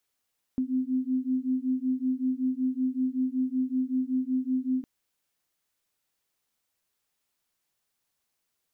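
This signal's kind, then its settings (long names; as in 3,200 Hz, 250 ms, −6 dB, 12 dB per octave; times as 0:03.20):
two tones that beat 255 Hz, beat 5.3 Hz, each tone −28 dBFS 4.26 s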